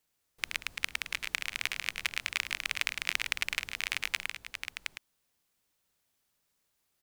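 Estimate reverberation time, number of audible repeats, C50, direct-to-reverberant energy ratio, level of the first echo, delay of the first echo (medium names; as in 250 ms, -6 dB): no reverb, 3, no reverb, no reverb, -10.0 dB, 108 ms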